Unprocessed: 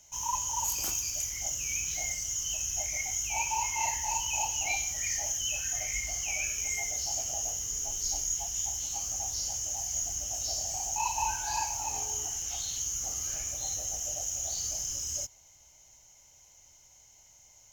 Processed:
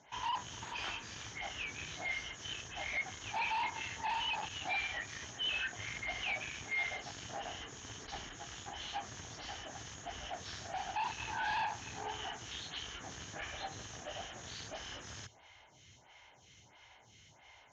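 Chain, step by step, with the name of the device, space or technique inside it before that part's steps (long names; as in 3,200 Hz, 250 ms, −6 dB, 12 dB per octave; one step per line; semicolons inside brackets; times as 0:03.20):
vibe pedal into a guitar amplifier (phaser with staggered stages 1.5 Hz; tube saturation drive 44 dB, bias 0.25; loudspeaker in its box 84–3,900 Hz, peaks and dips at 110 Hz +4 dB, 560 Hz −6 dB, 1,700 Hz +7 dB, 3,400 Hz +4 dB)
parametric band 4,900 Hz −3.5 dB 0.21 octaves
level +11 dB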